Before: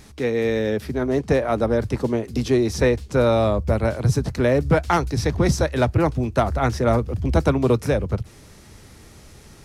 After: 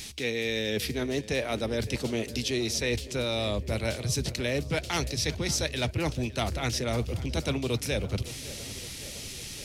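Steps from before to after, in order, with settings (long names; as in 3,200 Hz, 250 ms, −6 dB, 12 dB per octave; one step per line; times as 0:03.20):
high shelf with overshoot 1,900 Hz +13 dB, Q 1.5
reversed playback
downward compressor 6 to 1, threshold −25 dBFS, peak gain reduction 13 dB
reversed playback
feedback echo with a low-pass in the loop 560 ms, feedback 71%, low-pass 2,000 Hz, level −16 dB
level −1.5 dB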